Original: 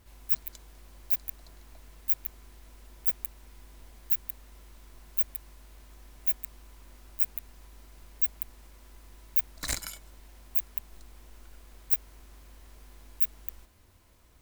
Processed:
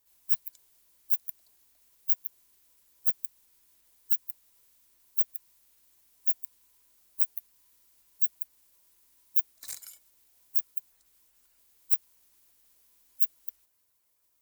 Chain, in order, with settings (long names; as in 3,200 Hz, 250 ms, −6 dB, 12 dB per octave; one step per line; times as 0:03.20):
spectral magnitudes quantised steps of 15 dB
RIAA equalisation recording
level −18 dB